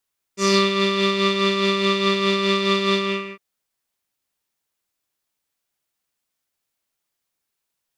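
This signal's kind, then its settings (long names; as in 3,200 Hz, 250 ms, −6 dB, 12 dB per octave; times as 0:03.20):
subtractive patch with tremolo G4, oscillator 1 square, oscillator 2 saw, interval +19 semitones, detune 11 cents, oscillator 2 level −2 dB, sub −2 dB, noise −6 dB, filter lowpass, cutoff 2,400 Hz, Q 3.1, filter envelope 1.5 octaves, attack 173 ms, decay 0.07 s, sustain −7.5 dB, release 0.42 s, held 2.59 s, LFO 4.8 Hz, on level 5 dB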